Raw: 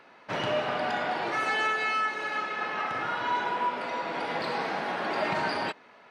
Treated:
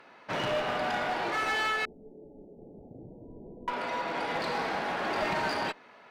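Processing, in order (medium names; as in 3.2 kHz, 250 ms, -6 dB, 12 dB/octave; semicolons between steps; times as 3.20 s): one-sided clip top -29 dBFS; 1.85–3.68 s: Gaussian low-pass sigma 22 samples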